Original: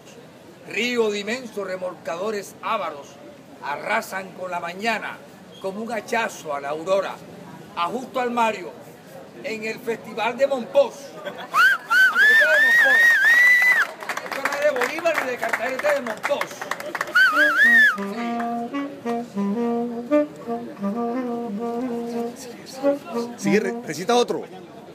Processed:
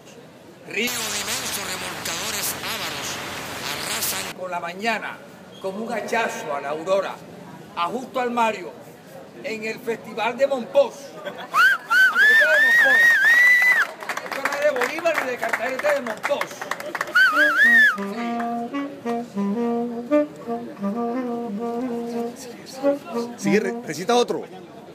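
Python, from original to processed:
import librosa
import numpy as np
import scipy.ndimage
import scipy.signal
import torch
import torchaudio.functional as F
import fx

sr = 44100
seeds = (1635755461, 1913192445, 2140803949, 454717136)

y = fx.spectral_comp(x, sr, ratio=10.0, at=(0.87, 4.32))
y = fx.reverb_throw(y, sr, start_s=5.12, length_s=1.1, rt60_s=2.6, drr_db=5.0)
y = fx.low_shelf(y, sr, hz=150.0, db=8.0, at=(12.77, 13.28))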